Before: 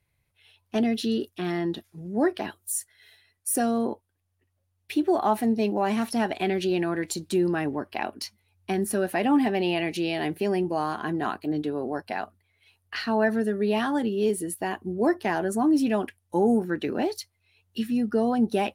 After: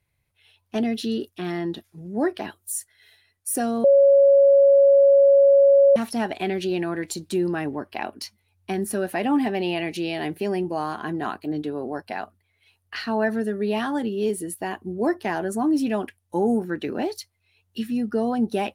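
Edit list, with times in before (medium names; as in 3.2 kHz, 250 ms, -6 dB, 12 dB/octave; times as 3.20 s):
3.84–5.96 s: bleep 556 Hz -11 dBFS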